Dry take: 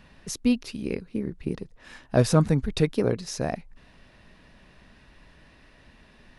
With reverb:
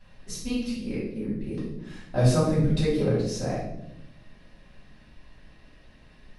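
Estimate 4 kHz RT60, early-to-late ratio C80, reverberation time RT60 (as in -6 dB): 0.70 s, 5.5 dB, 0.85 s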